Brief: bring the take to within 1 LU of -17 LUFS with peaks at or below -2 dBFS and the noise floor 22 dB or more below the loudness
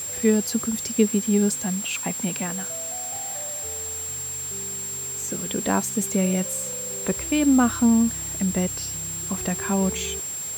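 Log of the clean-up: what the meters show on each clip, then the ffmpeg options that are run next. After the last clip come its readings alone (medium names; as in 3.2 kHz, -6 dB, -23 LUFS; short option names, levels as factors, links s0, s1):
steady tone 7.5 kHz; tone level -29 dBFS; noise floor -31 dBFS; noise floor target -46 dBFS; loudness -24.0 LUFS; peak level -6.5 dBFS; loudness target -17.0 LUFS
-> -af "bandreject=f=7500:w=30"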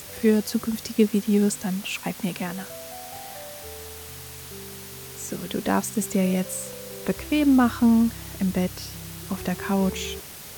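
steady tone not found; noise floor -41 dBFS; noise floor target -47 dBFS
-> -af "afftdn=nr=6:nf=-41"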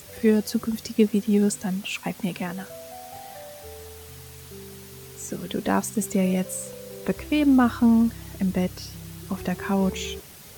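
noise floor -45 dBFS; noise floor target -47 dBFS
-> -af "afftdn=nr=6:nf=-45"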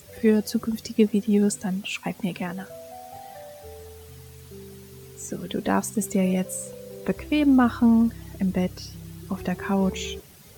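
noise floor -48 dBFS; loudness -24.5 LUFS; peak level -8.0 dBFS; loudness target -17.0 LUFS
-> -af "volume=2.37,alimiter=limit=0.794:level=0:latency=1"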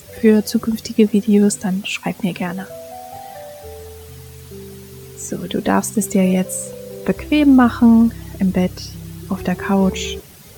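loudness -17.0 LUFS; peak level -2.0 dBFS; noise floor -41 dBFS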